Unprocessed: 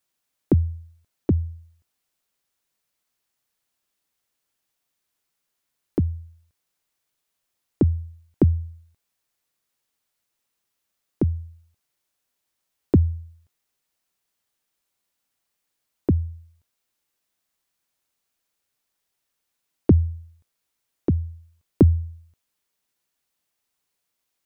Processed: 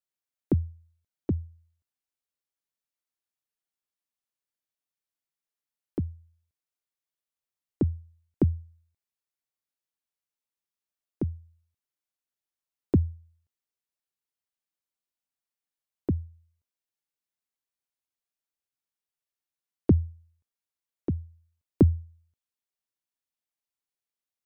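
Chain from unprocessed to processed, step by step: upward expander 1.5:1, over -34 dBFS; gain -3.5 dB

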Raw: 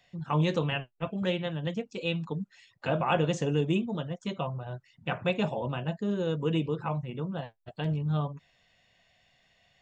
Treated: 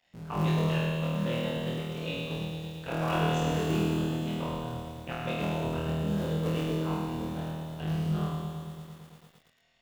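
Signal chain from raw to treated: cycle switcher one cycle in 3, muted; flutter echo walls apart 4.3 m, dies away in 1.2 s; lo-fi delay 0.113 s, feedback 80%, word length 8-bit, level -7 dB; gain -7 dB

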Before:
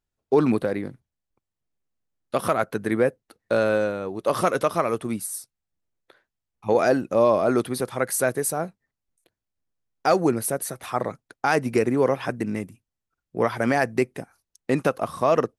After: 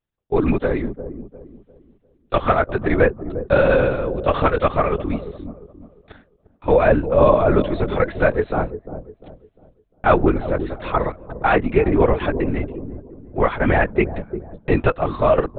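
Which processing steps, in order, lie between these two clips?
AGC gain up to 16.5 dB; LPC vocoder at 8 kHz whisper; on a send: dark delay 0.35 s, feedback 34%, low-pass 520 Hz, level -9 dB; on the sum: gain -2 dB

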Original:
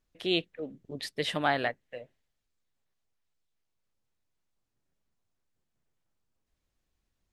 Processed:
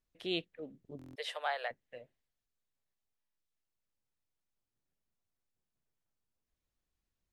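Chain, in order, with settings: 1.01–1.71 Chebyshev high-pass 470 Hz, order 5; stuck buffer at 0.97/3.19, samples 1024, times 7; gain -7.5 dB

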